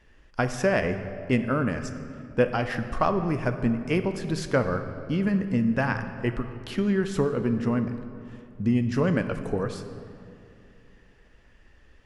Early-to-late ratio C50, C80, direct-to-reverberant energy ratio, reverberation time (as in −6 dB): 9.5 dB, 10.5 dB, 8.0 dB, 2.6 s